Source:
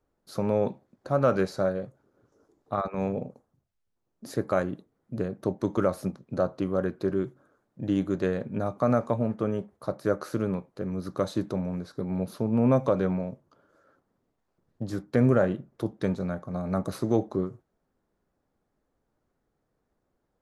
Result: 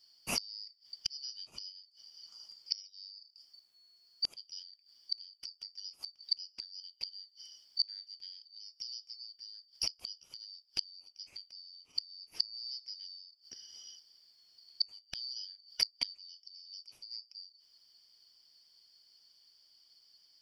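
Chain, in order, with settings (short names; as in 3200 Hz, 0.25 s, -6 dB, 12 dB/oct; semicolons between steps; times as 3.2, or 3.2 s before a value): four-band scrambler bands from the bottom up 4321; flipped gate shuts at -29 dBFS, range -34 dB; gain +12 dB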